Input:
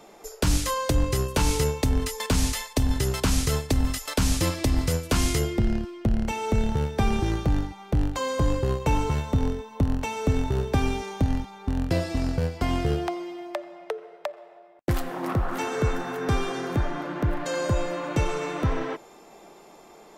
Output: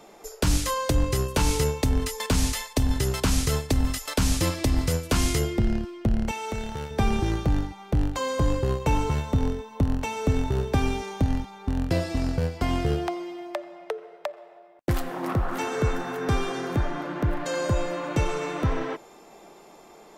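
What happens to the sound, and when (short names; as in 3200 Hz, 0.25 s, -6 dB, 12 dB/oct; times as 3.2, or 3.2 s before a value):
6.31–6.91 low shelf 490 Hz -10.5 dB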